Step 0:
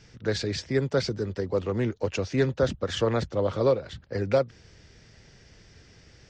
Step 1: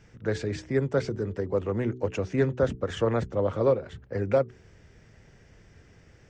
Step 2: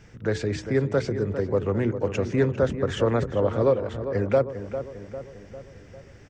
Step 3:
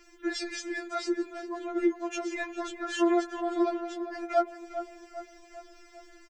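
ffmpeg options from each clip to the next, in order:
-af "equalizer=f=4500:w=1.2:g=-13,bandreject=f=62.5:t=h:w=4,bandreject=f=125:t=h:w=4,bandreject=f=187.5:t=h:w=4,bandreject=f=250:t=h:w=4,bandreject=f=312.5:t=h:w=4,bandreject=f=375:t=h:w=4,bandreject=f=437.5:t=h:w=4"
-filter_complex "[0:a]asplit=2[s0][s1];[s1]alimiter=limit=0.0708:level=0:latency=1:release=260,volume=0.75[s2];[s0][s2]amix=inputs=2:normalize=0,asplit=2[s3][s4];[s4]adelay=400,lowpass=f=2000:p=1,volume=0.316,asplit=2[s5][s6];[s6]adelay=400,lowpass=f=2000:p=1,volume=0.55,asplit=2[s7][s8];[s8]adelay=400,lowpass=f=2000:p=1,volume=0.55,asplit=2[s9][s10];[s10]adelay=400,lowpass=f=2000:p=1,volume=0.55,asplit=2[s11][s12];[s12]adelay=400,lowpass=f=2000:p=1,volume=0.55,asplit=2[s13][s14];[s14]adelay=400,lowpass=f=2000:p=1,volume=0.55[s15];[s3][s5][s7][s9][s11][s13][s15]amix=inputs=7:normalize=0"
-filter_complex "[0:a]highshelf=f=4800:g=8.5,asplit=2[s0][s1];[s1]adelay=140,highpass=300,lowpass=3400,asoftclip=type=hard:threshold=0.112,volume=0.0794[s2];[s0][s2]amix=inputs=2:normalize=0,afftfilt=real='re*4*eq(mod(b,16),0)':imag='im*4*eq(mod(b,16),0)':win_size=2048:overlap=0.75"

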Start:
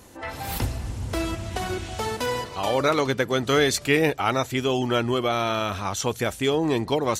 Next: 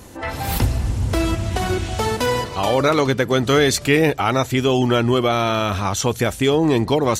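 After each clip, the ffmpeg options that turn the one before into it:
-filter_complex "[0:a]lowshelf=f=270:g=4.5,asplit=2[s0][s1];[s1]alimiter=limit=0.158:level=0:latency=1:release=120,volume=1[s2];[s0][s2]amix=inputs=2:normalize=0"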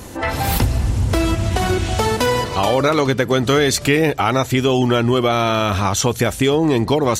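-af "acompressor=threshold=0.0708:ratio=2,volume=2.11"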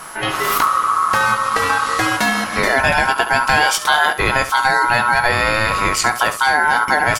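-af "aeval=exprs='val(0)*sin(2*PI*1200*n/s)':c=same,aeval=exprs='val(0)+0.00708*sin(2*PI*11000*n/s)':c=same,aecho=1:1:19|70:0.299|0.237,volume=1.41"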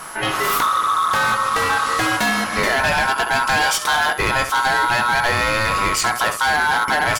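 -af "asoftclip=type=hard:threshold=0.211"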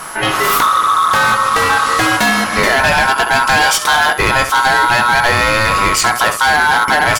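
-af "acrusher=bits=10:mix=0:aa=0.000001,volume=2"

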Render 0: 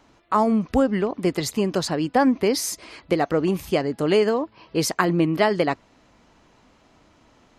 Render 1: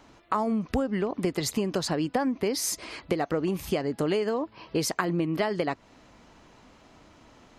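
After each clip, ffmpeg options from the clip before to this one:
-af "acompressor=threshold=0.0501:ratio=6,volume=1.26"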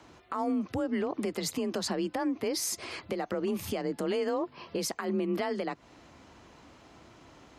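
-af "alimiter=limit=0.075:level=0:latency=1:release=133,afreqshift=32"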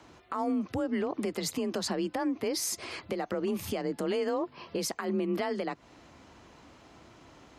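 -af anull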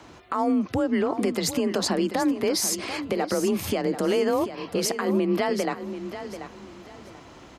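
-af "aecho=1:1:737|1474|2211:0.282|0.0733|0.0191,volume=2.24"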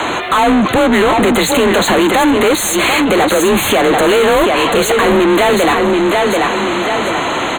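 -filter_complex "[0:a]asplit=2[s0][s1];[s1]highpass=f=720:p=1,volume=63.1,asoftclip=type=tanh:threshold=0.251[s2];[s0][s2]amix=inputs=2:normalize=0,lowpass=f=4300:p=1,volume=0.501,asuperstop=centerf=5200:order=12:qfactor=2.6,volume=2.37"

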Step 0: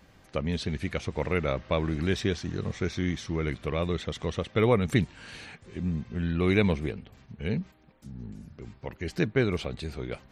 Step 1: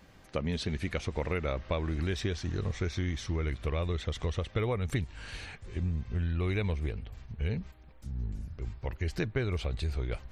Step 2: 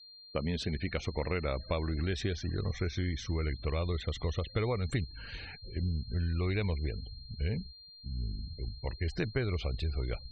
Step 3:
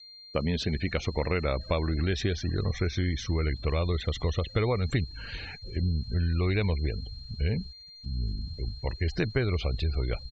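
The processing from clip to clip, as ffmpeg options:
-af "asubboost=boost=9:cutoff=63,acompressor=threshold=0.0447:ratio=6"
-af "agate=range=0.0224:threshold=0.00631:ratio=3:detection=peak,aeval=exprs='val(0)+0.00316*sin(2*PI*4200*n/s)':c=same,afftfilt=real='re*gte(hypot(re,im),0.00631)':imag='im*gte(hypot(re,im),0.00631)':win_size=1024:overlap=0.75,volume=0.891"
-af "aeval=exprs='val(0)*gte(abs(val(0)),0.00133)':c=same,aresample=16000,aresample=44100,volume=1.78"

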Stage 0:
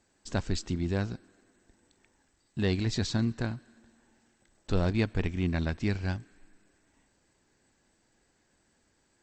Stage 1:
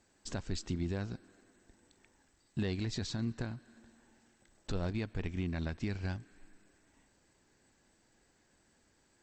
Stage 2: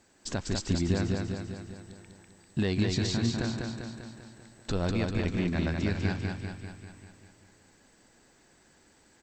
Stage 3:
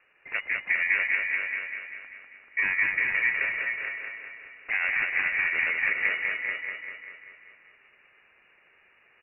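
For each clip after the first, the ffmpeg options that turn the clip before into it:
-af "alimiter=level_in=1.19:limit=0.0631:level=0:latency=1:release=324,volume=0.841"
-af "lowshelf=f=70:g=-6,aecho=1:1:197|394|591|788|985|1182|1379|1576:0.668|0.388|0.225|0.13|0.0756|0.0439|0.0254|0.0148,volume=2.24"
-af "aeval=exprs='val(0)*sin(2*PI*820*n/s)':c=same,lowpass=f=2500:t=q:w=0.5098,lowpass=f=2500:t=q:w=0.6013,lowpass=f=2500:t=q:w=0.9,lowpass=f=2500:t=q:w=2.563,afreqshift=-2900,aecho=1:1:436:0.501,volume=1.68"

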